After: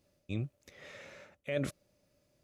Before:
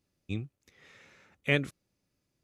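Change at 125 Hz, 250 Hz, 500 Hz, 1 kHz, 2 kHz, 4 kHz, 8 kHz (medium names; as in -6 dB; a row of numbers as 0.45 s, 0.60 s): -3.5 dB, -3.5 dB, -2.5 dB, -6.5 dB, -12.0 dB, -10.0 dB, +3.0 dB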